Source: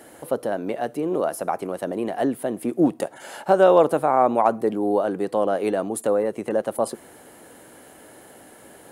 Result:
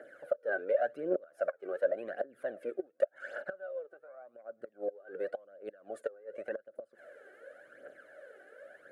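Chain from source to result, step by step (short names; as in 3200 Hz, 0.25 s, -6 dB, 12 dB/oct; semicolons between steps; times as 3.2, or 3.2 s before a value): flipped gate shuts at -13 dBFS, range -26 dB; phaser 0.89 Hz, delay 2.7 ms, feedback 66%; double band-pass 930 Hz, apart 1.4 oct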